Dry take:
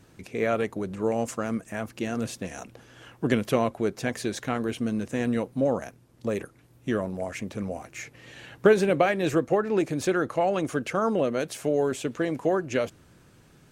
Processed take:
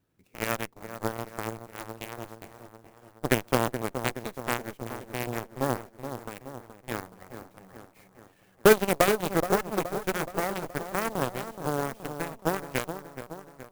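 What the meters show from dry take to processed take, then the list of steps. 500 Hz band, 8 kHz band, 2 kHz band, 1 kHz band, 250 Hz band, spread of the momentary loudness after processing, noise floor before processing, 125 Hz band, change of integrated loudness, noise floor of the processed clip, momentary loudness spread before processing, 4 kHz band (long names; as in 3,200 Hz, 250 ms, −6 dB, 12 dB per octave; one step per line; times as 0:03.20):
−4.0 dB, +2.0 dB, 0.0 dB, 0.0 dB, −6.0 dB, 19 LU, −57 dBFS, −2.5 dB, −2.5 dB, −61 dBFS, 13 LU, +1.5 dB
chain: harmonic generator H 4 −21 dB, 7 −16 dB, 8 −44 dB, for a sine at −6.5 dBFS
delay with a low-pass on its return 423 ms, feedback 56%, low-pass 1,500 Hz, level −9 dB
converter with an unsteady clock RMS 0.046 ms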